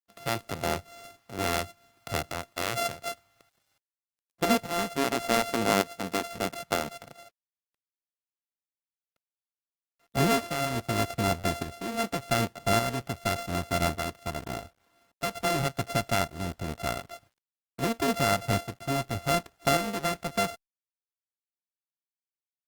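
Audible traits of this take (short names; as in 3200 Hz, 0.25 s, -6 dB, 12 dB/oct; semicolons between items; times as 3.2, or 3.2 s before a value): a buzz of ramps at a fixed pitch in blocks of 64 samples; tremolo saw up 0.86 Hz, depth 55%; a quantiser's noise floor 12-bit, dither none; Opus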